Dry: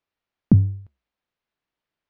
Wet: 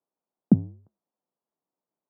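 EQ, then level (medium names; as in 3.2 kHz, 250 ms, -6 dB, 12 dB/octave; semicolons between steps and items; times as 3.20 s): high-pass 160 Hz 24 dB/octave; low-pass 1 kHz 24 dB/octave; dynamic bell 730 Hz, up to +6 dB, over -48 dBFS, Q 2.8; 0.0 dB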